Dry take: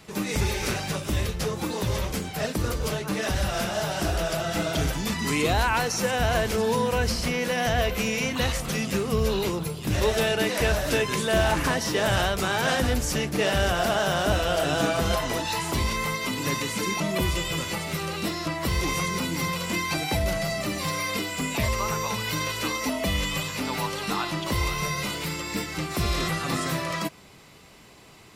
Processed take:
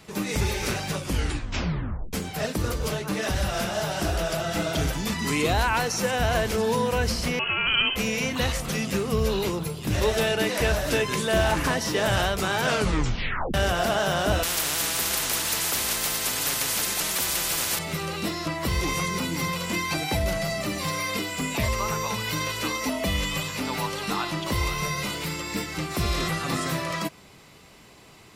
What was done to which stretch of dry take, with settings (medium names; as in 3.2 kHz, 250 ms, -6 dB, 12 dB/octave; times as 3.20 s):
0.98 s: tape stop 1.15 s
7.39–7.96 s: frequency inversion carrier 3.1 kHz
12.64 s: tape stop 0.90 s
14.43–17.79 s: spectrum-flattening compressor 10:1